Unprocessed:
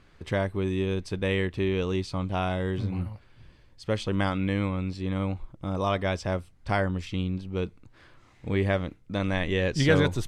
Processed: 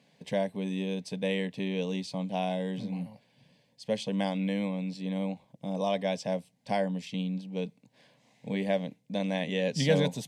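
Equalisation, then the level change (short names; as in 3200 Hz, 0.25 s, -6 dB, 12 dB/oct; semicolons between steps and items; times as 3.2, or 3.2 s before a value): HPF 120 Hz 24 dB/oct; fixed phaser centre 350 Hz, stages 6; 0.0 dB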